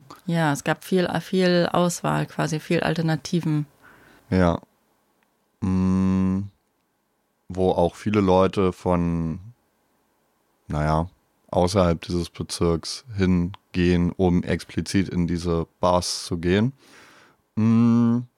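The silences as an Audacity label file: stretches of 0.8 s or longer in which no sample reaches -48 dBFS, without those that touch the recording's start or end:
6.500000	7.500000	silence
9.520000	10.690000	silence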